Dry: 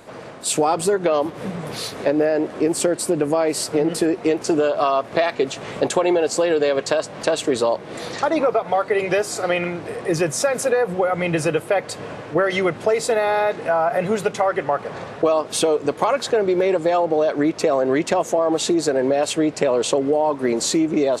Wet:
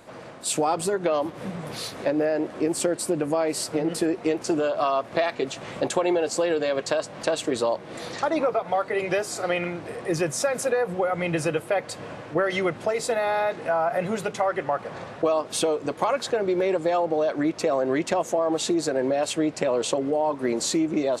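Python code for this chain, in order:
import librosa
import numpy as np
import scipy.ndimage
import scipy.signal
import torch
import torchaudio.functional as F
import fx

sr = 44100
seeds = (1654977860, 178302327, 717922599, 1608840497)

y = fx.notch(x, sr, hz=430.0, q=12.0)
y = y * librosa.db_to_amplitude(-4.5)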